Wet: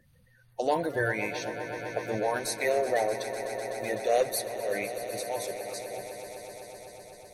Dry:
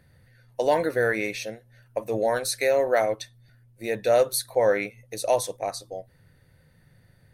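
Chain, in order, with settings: bin magnitudes rounded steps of 30 dB; 4.04–5.72 auto swell 0.262 s; swelling echo 0.126 s, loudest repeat 5, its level -14.5 dB; gain -4.5 dB

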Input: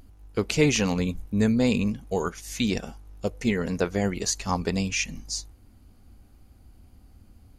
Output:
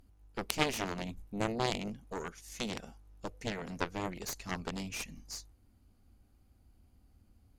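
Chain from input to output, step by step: added harmonics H 2 -16 dB, 3 -9 dB, 4 -16 dB, 7 -28 dB, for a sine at -6 dBFS; gain -2 dB

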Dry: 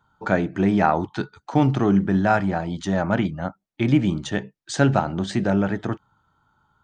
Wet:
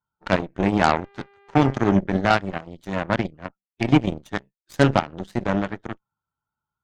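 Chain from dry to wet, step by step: bin magnitudes rounded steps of 15 dB; 0.92–1.9 buzz 400 Hz, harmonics 5, -36 dBFS -5 dB/oct; added harmonics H 3 -34 dB, 7 -18 dB, 8 -29 dB, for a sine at -4.5 dBFS; gain +2.5 dB

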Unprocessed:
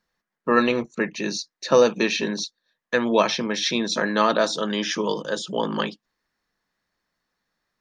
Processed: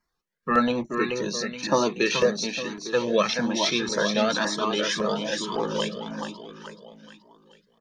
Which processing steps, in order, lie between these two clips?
feedback echo 0.428 s, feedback 43%, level -5.5 dB; LFO notch saw down 1.8 Hz 470–3800 Hz; cascading flanger rising 1.1 Hz; gain +3.5 dB

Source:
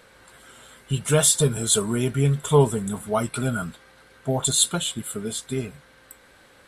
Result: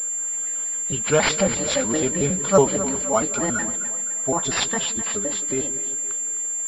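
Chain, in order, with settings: trilling pitch shifter +4.5 st, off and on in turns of 92 ms; bell 130 Hz -11 dB 0.99 oct; split-band echo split 460 Hz, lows 0.172 s, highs 0.257 s, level -12.5 dB; pulse-width modulation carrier 7300 Hz; gain +3 dB

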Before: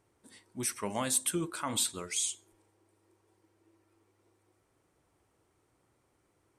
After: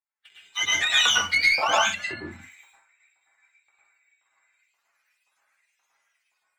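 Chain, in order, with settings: spectrum mirrored in octaves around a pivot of 870 Hz; limiter -20 dBFS, peak gain reduction 11 dB; AGC gain up to 8 dB; expander -53 dBFS; LFO high-pass saw up 1.9 Hz 960–3900 Hz; compressor 5:1, threshold -32 dBFS, peak gain reduction 13.5 dB; sample leveller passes 1; 1.9–2.31 treble ducked by the level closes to 1200 Hz, closed at -35 dBFS; reverb, pre-delay 0.1 s, DRR -4 dB; gain +8 dB

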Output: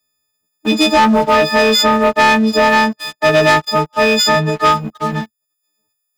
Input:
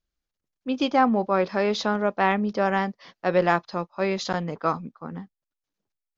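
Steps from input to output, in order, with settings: frequency quantiser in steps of 6 st; HPF 70 Hz 24 dB/oct; sample leveller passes 3; three-band squash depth 40%; gain +1 dB

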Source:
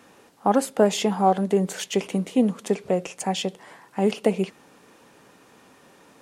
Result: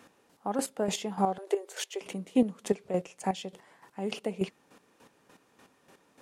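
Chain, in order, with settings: chopper 3.4 Hz, depth 65%, duty 25%; 1.38–2.01 brick-wall FIR high-pass 310 Hz; gain -3.5 dB

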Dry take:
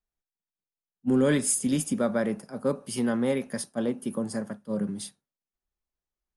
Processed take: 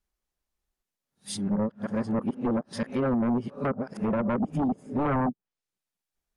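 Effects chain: whole clip reversed; treble ducked by the level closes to 610 Hz, closed at -23 dBFS; sine folder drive 9 dB, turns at -14.5 dBFS; gain -7.5 dB

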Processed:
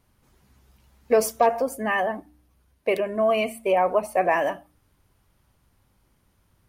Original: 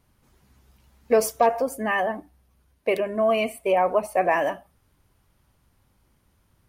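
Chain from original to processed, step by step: de-hum 75.35 Hz, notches 4

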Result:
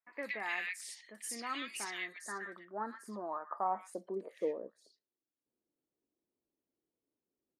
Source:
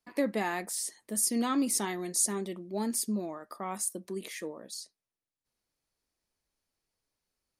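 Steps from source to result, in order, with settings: 2.06–3.67 resonant high shelf 2000 Hz -7 dB, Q 3; three bands offset in time lows, highs, mids 60/120 ms, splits 1700/5200 Hz; band-pass sweep 2300 Hz -> 320 Hz, 1.96–5.22; gain +7 dB

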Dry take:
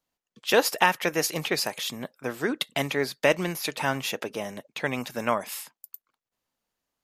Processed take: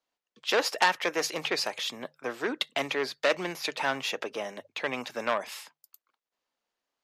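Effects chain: three-band isolator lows -13 dB, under 290 Hz, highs -14 dB, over 6600 Hz; notches 50/100/150 Hz; core saturation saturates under 3100 Hz

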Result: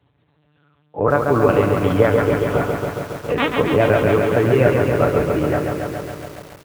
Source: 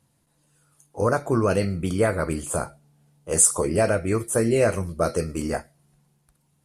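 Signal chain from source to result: tracing distortion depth 0.054 ms; on a send: multi-head echo 0.141 s, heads first and second, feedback 63%, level -18.5 dB; on the sum: LPC vocoder at 8 kHz pitch kept; HPF 66 Hz 24 dB/oct; comb 6.9 ms, depth 39%; in parallel at -1.5 dB: compressor 10:1, threshold -30 dBFS, peak gain reduction 16.5 dB; on the sum: lo-fi delay 0.138 s, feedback 80%, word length 7-bit, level -4.5 dB; gain +2.5 dB

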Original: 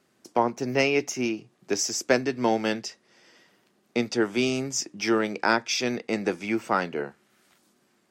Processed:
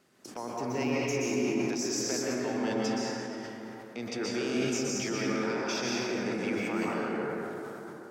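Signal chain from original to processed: compressor, threshold -32 dBFS, peak gain reduction 15.5 dB; limiter -27.5 dBFS, peak gain reduction 11 dB; plate-style reverb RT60 3.6 s, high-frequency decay 0.35×, pre-delay 0.11 s, DRR -5.5 dB; sustainer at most 25 dB/s

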